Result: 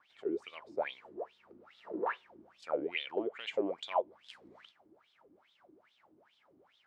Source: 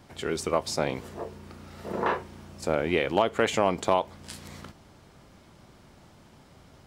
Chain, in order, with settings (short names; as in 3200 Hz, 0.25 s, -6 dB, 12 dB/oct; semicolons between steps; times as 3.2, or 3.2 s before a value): wah 2.4 Hz 300–3600 Hz, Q 10; gain +3.5 dB